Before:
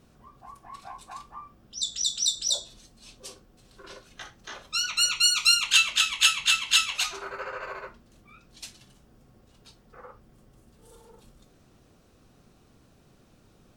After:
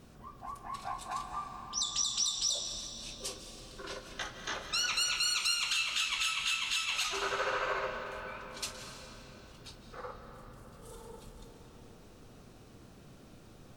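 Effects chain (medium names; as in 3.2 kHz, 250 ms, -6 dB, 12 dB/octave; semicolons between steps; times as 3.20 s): compression, threshold -29 dBFS, peak gain reduction 13.5 dB; peak limiter -25 dBFS, peak gain reduction 9 dB; on a send: reverberation RT60 4.1 s, pre-delay 115 ms, DRR 5 dB; on the sum: trim +3 dB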